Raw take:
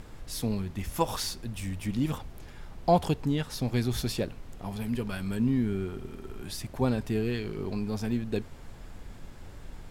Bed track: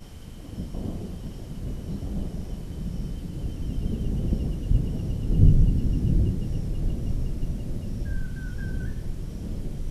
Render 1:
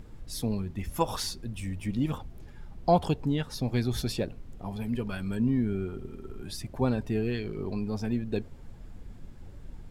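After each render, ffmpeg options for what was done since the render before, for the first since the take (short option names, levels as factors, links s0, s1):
-af "afftdn=nr=9:nf=-46"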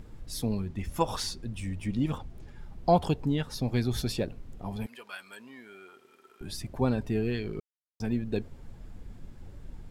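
-filter_complex "[0:a]asettb=1/sr,asplit=3[s0][s1][s2];[s0]atrim=end=0.674[s3];[s1]atrim=start=0.67:end=2.59,asetpts=PTS-STARTPTS,afade=t=in:d=0.004:c=qsin,afade=t=out:st=1.916:d=0.004:c=qsin,equalizer=f=13000:t=o:w=0.38:g=-8.5[s4];[s2]atrim=start=2.586[s5];[s3][s4]acrossfade=d=0.004:c1=hsin:c2=qsin[s6];[s6][s5]acrossfade=d=0.004:c1=qsin:c2=hsin,asettb=1/sr,asplit=3[s7][s8][s9];[s7]atrim=end=4.864[s10];[s8]atrim=start=4.86:end=6.41,asetpts=PTS-STARTPTS,afade=t=in:d=0.004:c=qsin,afade=t=out:st=1.546:d=0.004:c=qsin,highpass=1000[s11];[s9]atrim=start=6.406[s12];[s10][s11]acrossfade=d=0.004:c1=hsin:c2=qsin[s13];[s13][s12]acrossfade=d=0.004:c1=qsin:c2=hsin,asplit=3[s14][s15][s16];[s14]atrim=end=7.6,asetpts=PTS-STARTPTS,afade=t=out:st=7.596:d=0.004:c=hsin[s17];[s15]atrim=start=7.6:end=8,asetpts=PTS-STARTPTS,volume=0[s18];[s16]atrim=start=8,asetpts=PTS-STARTPTS,afade=t=in:d=0.004:c=hsin[s19];[s17][s18][s19]concat=n=3:v=0:a=1"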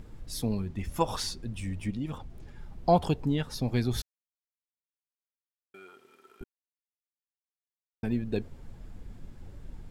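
-filter_complex "[0:a]asettb=1/sr,asplit=3[s0][s1][s2];[s0]atrim=end=1.904[s3];[s1]atrim=start=1.9:end=2.46,asetpts=PTS-STARTPTS,afade=t=in:d=0.004:c=qsin,afade=t=out:st=0.556:d=0.004:c=qsin,acompressor=threshold=0.01:ratio=1.5:attack=3.2:release=140:knee=1:detection=peak[s4];[s2]atrim=start=2.456[s5];[s3][s4]acrossfade=d=0.004:c1=hsin:c2=qsin[s6];[s6][s5]acrossfade=d=0.004:c1=qsin:c2=hsin,asplit=5[s7][s8][s9][s10][s11];[s7]atrim=end=4.02,asetpts=PTS-STARTPTS,afade=t=out:st=4.016:d=0.004:c=hsin[s12];[s8]atrim=start=4.02:end=5.74,asetpts=PTS-STARTPTS,volume=0[s13];[s9]atrim=start=5.74:end=6.44,asetpts=PTS-STARTPTS,afade=t=in:d=0.004:c=hsin,afade=t=out:st=0.696:d=0.004:c=hsin[s14];[s10]atrim=start=6.44:end=8.03,asetpts=PTS-STARTPTS,volume=0[s15];[s11]atrim=start=8.03,asetpts=PTS-STARTPTS,afade=t=in:d=0.004:c=hsin[s16];[s12][s13][s14][s15][s16]concat=n=5:v=0:a=1"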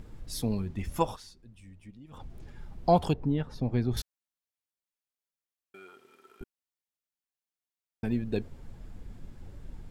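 -filter_complex "[0:a]asettb=1/sr,asplit=3[s0][s1][s2];[s0]atrim=end=3.134[s3];[s1]atrim=start=3.13:end=3.97,asetpts=PTS-STARTPTS,afade=t=in:d=0.004:c=qsin,afade=t=out:st=0.836:d=0.004:c=qsin,lowpass=f=1100:p=1[s4];[s2]atrim=start=3.966[s5];[s3][s4]acrossfade=d=0.004:c1=hsin:c2=qsin[s6];[s6][s5]acrossfade=d=0.004:c1=qsin:c2=hsin,asplit=3[s7][s8][s9];[s7]atrim=end=1.17,asetpts=PTS-STARTPTS,afade=t=out:st=1.01:d=0.16:c=qsin:silence=0.149624[s10];[s8]atrim=start=1.17:end=2.11,asetpts=PTS-STARTPTS,volume=0.15[s11];[s9]atrim=start=2.11,asetpts=PTS-STARTPTS,afade=t=in:d=0.16:c=qsin:silence=0.149624[s12];[s10][s11][s12]concat=n=3:v=0:a=1"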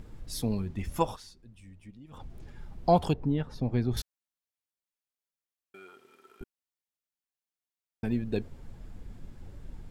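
-af anull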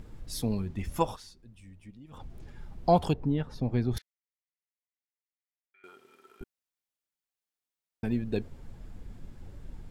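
-filter_complex "[0:a]asettb=1/sr,asplit=3[s0][s1][s2];[s0]atrim=end=3.984[s3];[s1]atrim=start=3.98:end=5.84,asetpts=PTS-STARTPTS,afade=t=in:d=0.004:c=qsin,afade=t=out:st=1.856:d=0.004:c=qsin,bandpass=f=2000:t=q:w=6.6[s4];[s2]atrim=start=5.836[s5];[s3][s4]acrossfade=d=0.004:c1=hsin:c2=qsin[s6];[s6][s5]acrossfade=d=0.004:c1=qsin:c2=hsin"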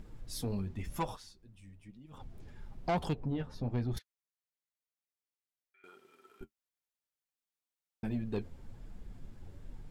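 -af "flanger=delay=4.8:depth=6.9:regen=-40:speed=1:shape=triangular,asoftclip=type=tanh:threshold=0.0473"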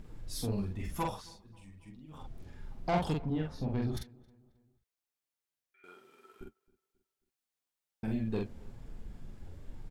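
-filter_complex "[0:a]asplit=2[s0][s1];[s1]adelay=45,volume=0.75[s2];[s0][s2]amix=inputs=2:normalize=0,asplit=2[s3][s4];[s4]adelay=269,lowpass=f=2600:p=1,volume=0.0631,asplit=2[s5][s6];[s6]adelay=269,lowpass=f=2600:p=1,volume=0.47,asplit=2[s7][s8];[s8]adelay=269,lowpass=f=2600:p=1,volume=0.47[s9];[s3][s5][s7][s9]amix=inputs=4:normalize=0"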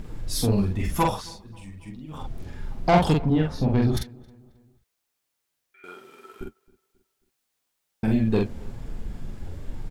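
-af "volume=3.98"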